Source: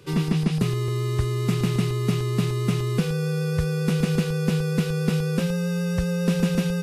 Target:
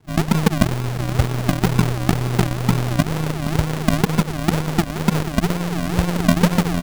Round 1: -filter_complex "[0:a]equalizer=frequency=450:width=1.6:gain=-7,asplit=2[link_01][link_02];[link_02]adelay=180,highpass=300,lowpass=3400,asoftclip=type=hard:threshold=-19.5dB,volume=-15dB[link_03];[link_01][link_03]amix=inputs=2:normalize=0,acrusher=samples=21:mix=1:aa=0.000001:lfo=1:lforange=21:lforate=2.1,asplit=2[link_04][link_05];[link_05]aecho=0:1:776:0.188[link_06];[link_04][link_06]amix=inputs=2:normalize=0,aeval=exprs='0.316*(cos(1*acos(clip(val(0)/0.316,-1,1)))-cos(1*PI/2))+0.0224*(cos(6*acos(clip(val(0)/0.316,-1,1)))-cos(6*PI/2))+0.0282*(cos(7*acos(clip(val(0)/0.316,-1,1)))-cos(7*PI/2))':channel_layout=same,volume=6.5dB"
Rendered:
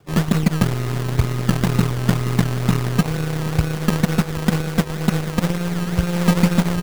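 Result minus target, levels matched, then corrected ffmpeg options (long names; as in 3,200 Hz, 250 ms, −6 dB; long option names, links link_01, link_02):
sample-and-hold swept by an LFO: distortion −10 dB
-filter_complex "[0:a]equalizer=frequency=450:width=1.6:gain=-7,asplit=2[link_01][link_02];[link_02]adelay=180,highpass=300,lowpass=3400,asoftclip=type=hard:threshold=-19.5dB,volume=-15dB[link_03];[link_01][link_03]amix=inputs=2:normalize=0,acrusher=samples=69:mix=1:aa=0.000001:lfo=1:lforange=69:lforate=2.1,asplit=2[link_04][link_05];[link_05]aecho=0:1:776:0.188[link_06];[link_04][link_06]amix=inputs=2:normalize=0,aeval=exprs='0.316*(cos(1*acos(clip(val(0)/0.316,-1,1)))-cos(1*PI/2))+0.0224*(cos(6*acos(clip(val(0)/0.316,-1,1)))-cos(6*PI/2))+0.0282*(cos(7*acos(clip(val(0)/0.316,-1,1)))-cos(7*PI/2))':channel_layout=same,volume=6.5dB"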